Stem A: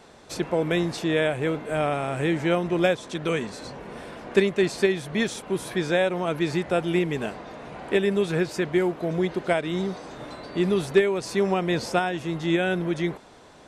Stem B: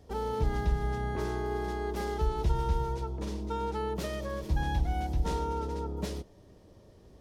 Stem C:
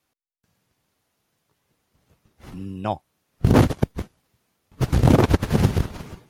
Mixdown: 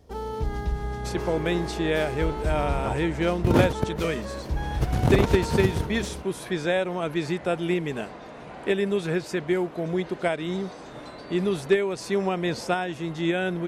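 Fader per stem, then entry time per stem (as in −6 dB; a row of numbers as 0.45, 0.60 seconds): −2.0, +0.5, −6.0 decibels; 0.75, 0.00, 0.00 seconds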